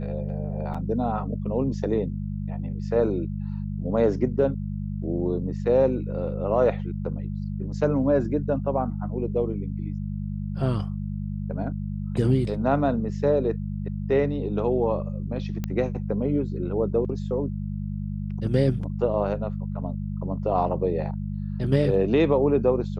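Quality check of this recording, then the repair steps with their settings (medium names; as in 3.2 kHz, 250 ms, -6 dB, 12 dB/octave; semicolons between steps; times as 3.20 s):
hum 50 Hz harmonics 4 -30 dBFS
0.74–0.75 s: dropout 5.3 ms
15.64 s: pop -16 dBFS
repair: de-click; de-hum 50 Hz, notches 4; interpolate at 0.74 s, 5.3 ms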